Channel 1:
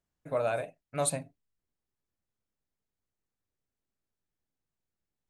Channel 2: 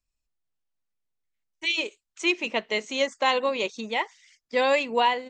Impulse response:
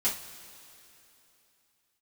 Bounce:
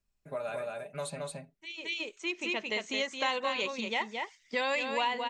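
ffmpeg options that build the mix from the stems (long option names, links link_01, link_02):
-filter_complex "[0:a]aecho=1:1:5:0.69,volume=-5.5dB,asplit=3[link_01][link_02][link_03];[link_02]volume=-3dB[link_04];[1:a]bass=frequency=250:gain=4,treble=frequency=4000:gain=-2,volume=-1dB,asplit=2[link_05][link_06];[link_06]volume=-8dB[link_07];[link_03]apad=whole_len=233565[link_08];[link_05][link_08]sidechaincompress=threshold=-48dB:ratio=10:attack=5.2:release=1210[link_09];[link_04][link_07]amix=inputs=2:normalize=0,aecho=0:1:220:1[link_10];[link_01][link_09][link_10]amix=inputs=3:normalize=0,acrossover=split=960|5800[link_11][link_12][link_13];[link_11]acompressor=threshold=-36dB:ratio=4[link_14];[link_12]acompressor=threshold=-30dB:ratio=4[link_15];[link_13]acompressor=threshold=-50dB:ratio=4[link_16];[link_14][link_15][link_16]amix=inputs=3:normalize=0"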